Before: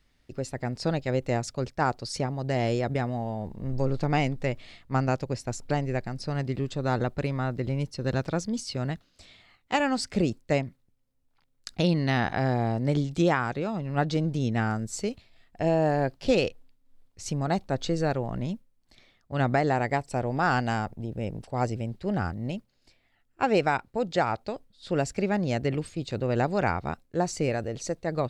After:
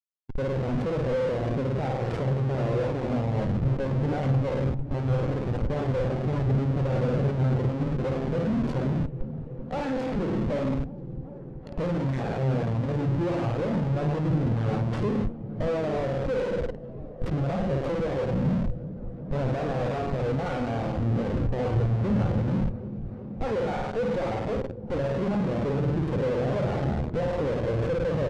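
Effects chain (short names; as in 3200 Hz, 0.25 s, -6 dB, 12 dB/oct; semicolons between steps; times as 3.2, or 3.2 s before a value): tracing distortion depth 0.49 ms; bell 520 Hz +8.5 dB 0.27 oct; resonator 69 Hz, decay 0.25 s, harmonics all, mix 40%; flutter echo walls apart 9 m, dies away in 0.68 s; in parallel at +0.5 dB: compressor 20:1, threshold -31 dBFS, peak gain reduction 17.5 dB; on the sum: downsampling 32000 Hz; Schmitt trigger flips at -32 dBFS; air absorption 58 m; on a send: repeats that get brighter 0.381 s, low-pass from 200 Hz, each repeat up 1 oct, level -6 dB; on the sum: spectral expander 1.5:1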